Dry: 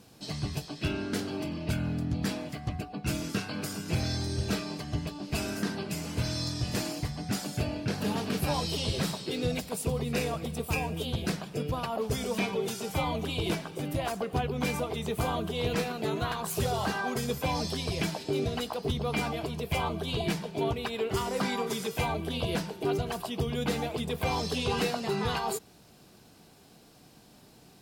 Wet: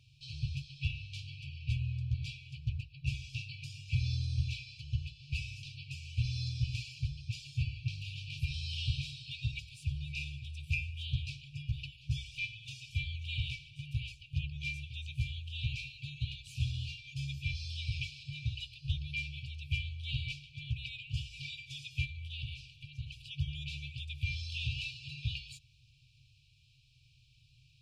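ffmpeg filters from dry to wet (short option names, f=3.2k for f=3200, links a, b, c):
-filter_complex "[0:a]asettb=1/sr,asplit=3[a][b][c];[a]atrim=end=22.054[d];[b]atrim=start=22.05:end=23.19,asetpts=PTS-STARTPTS,afade=t=in:d=0.004:c=qsin,afade=t=out:st=1.136:d=0.004:c=qsin,acompressor=threshold=-31dB:ratio=6:attack=3.2:release=140:knee=1:detection=peak[e];[c]atrim=start=23.186[f];[d][e]acrossfade=d=0.004:c1=hsin:c2=qsin[g];[g][f]acrossfade=d=0.004:c1=qsin:c2=hsin,lowpass=3k,afftfilt=real='re*(1-between(b*sr/4096,140,2300))':imag='im*(1-between(b*sr/4096,140,2300))':win_size=4096:overlap=0.75"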